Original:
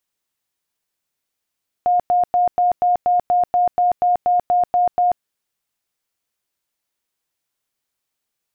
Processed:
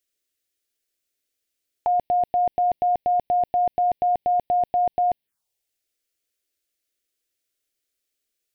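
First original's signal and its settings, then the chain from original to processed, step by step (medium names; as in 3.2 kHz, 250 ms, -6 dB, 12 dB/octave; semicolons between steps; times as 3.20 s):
tone bursts 714 Hz, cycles 98, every 0.24 s, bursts 14, -12.5 dBFS
touch-sensitive phaser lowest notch 160 Hz, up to 1.3 kHz, full sweep at -21.5 dBFS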